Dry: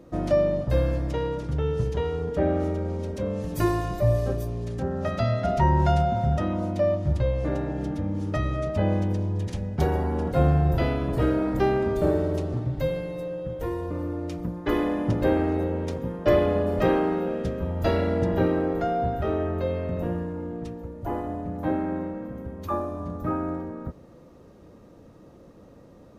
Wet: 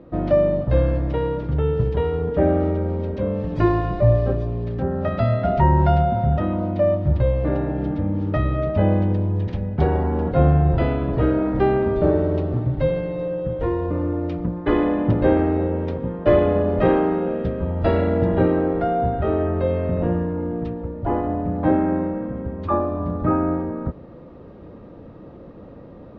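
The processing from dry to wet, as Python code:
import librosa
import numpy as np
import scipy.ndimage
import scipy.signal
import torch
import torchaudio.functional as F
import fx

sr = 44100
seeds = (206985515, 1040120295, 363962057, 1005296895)

p1 = scipy.signal.sosfilt(scipy.signal.butter(4, 4100.0, 'lowpass', fs=sr, output='sos'), x)
p2 = fx.high_shelf(p1, sr, hz=2700.0, db=-9.0)
p3 = fx.rider(p2, sr, range_db=10, speed_s=2.0)
y = p2 + F.gain(torch.from_numpy(p3), -2.0).numpy()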